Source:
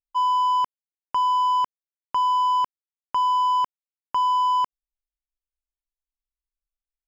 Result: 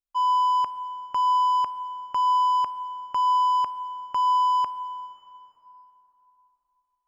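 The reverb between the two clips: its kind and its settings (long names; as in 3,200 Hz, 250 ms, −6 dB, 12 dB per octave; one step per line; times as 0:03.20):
dense smooth reverb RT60 3.6 s, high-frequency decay 0.65×, DRR 11.5 dB
level −2.5 dB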